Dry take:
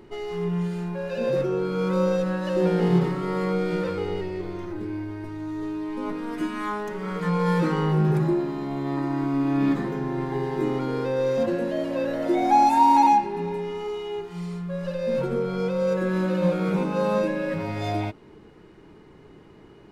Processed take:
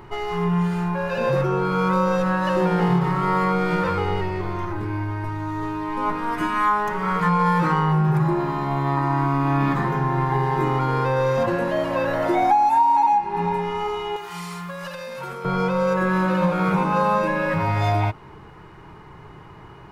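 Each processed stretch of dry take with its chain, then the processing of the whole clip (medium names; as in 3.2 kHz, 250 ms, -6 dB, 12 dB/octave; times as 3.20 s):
14.16–15.45 s: tilt EQ +3.5 dB/octave + compression, threshold -35 dBFS
whole clip: graphic EQ 125/250/500/1000/4000/8000 Hz +5/-10/-6/+8/-4/-4 dB; compression 8:1, threshold -24 dBFS; trim +8.5 dB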